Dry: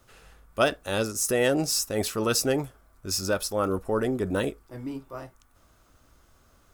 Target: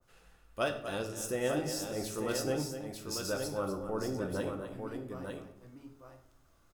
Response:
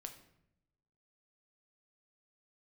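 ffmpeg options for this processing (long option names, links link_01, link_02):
-filter_complex "[0:a]aecho=1:1:98|248|897:0.126|0.335|0.473[link_01];[1:a]atrim=start_sample=2205,asetrate=48510,aresample=44100[link_02];[link_01][link_02]afir=irnorm=-1:irlink=0,adynamicequalizer=threshold=0.00631:dfrequency=1500:dqfactor=0.7:tfrequency=1500:tqfactor=0.7:attack=5:release=100:ratio=0.375:range=2:mode=cutabove:tftype=highshelf,volume=-3.5dB"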